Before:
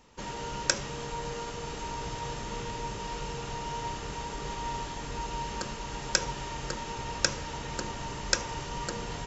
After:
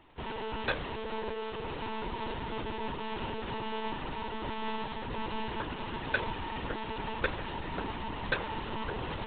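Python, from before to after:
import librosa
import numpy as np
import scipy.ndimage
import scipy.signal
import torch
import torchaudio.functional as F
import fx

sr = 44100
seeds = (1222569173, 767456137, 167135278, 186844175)

y = fx.lpc_monotone(x, sr, seeds[0], pitch_hz=220.0, order=16)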